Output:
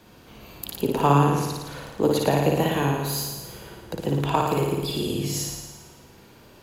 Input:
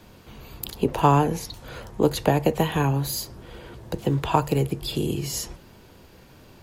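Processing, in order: low shelf 79 Hz -9.5 dB; on a send: flutter echo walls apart 9.6 m, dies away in 1.2 s; on the sum: gain -2 dB

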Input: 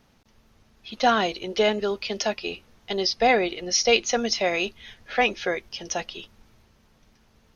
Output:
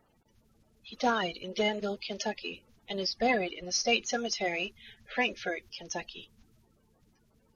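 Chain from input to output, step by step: bin magnitudes rounded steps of 30 dB; gain -7 dB

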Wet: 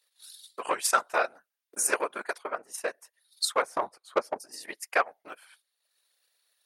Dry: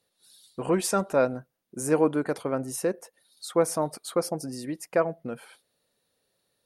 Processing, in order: whisperiser; 3.62–4.4 tilt -4 dB/oct; transient shaper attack +10 dB, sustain -8 dB; 2.38–2.88 high shelf 2800 Hz -10.5 dB; in parallel at -5.5 dB: soft clip -14 dBFS, distortion -6 dB; on the sum: HPF 1300 Hz 12 dB/oct

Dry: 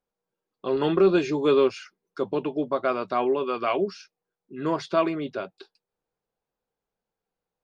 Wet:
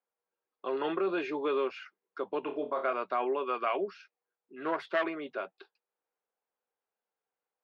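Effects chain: 4.56–5.04 self-modulated delay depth 0.25 ms; three-band isolator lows -21 dB, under 210 Hz, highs -23 dB, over 3000 Hz; 2.4–2.93 flutter echo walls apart 4.8 m, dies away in 0.28 s; limiter -16.5 dBFS, peak gain reduction 5.5 dB; low shelf 470 Hz -12 dB

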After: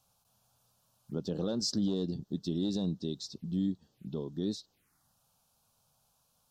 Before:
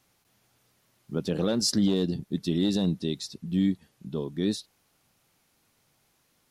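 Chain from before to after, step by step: in parallel at +2.5 dB: compressor, threshold -35 dBFS, peak gain reduction 14.5 dB; on the sum: envelope phaser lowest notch 320 Hz, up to 2200 Hz, full sweep at -29 dBFS; gain -9 dB

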